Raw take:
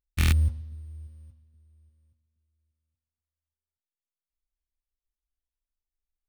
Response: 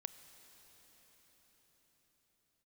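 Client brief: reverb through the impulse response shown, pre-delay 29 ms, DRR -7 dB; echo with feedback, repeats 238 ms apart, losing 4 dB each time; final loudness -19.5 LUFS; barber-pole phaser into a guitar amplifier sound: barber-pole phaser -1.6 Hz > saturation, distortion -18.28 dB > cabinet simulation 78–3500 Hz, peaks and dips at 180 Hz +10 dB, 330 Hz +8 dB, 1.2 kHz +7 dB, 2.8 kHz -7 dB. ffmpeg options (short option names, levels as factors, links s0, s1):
-filter_complex "[0:a]aecho=1:1:238|476|714|952|1190|1428|1666|1904|2142:0.631|0.398|0.25|0.158|0.0994|0.0626|0.0394|0.0249|0.0157,asplit=2[s0][s1];[1:a]atrim=start_sample=2205,adelay=29[s2];[s1][s2]afir=irnorm=-1:irlink=0,volume=3.55[s3];[s0][s3]amix=inputs=2:normalize=0,asplit=2[s4][s5];[s5]afreqshift=-1.6[s6];[s4][s6]amix=inputs=2:normalize=1,asoftclip=threshold=0.224,highpass=78,equalizer=f=180:t=q:w=4:g=10,equalizer=f=330:t=q:w=4:g=8,equalizer=f=1200:t=q:w=4:g=7,equalizer=f=2800:t=q:w=4:g=-7,lowpass=f=3500:w=0.5412,lowpass=f=3500:w=1.3066,volume=2.66"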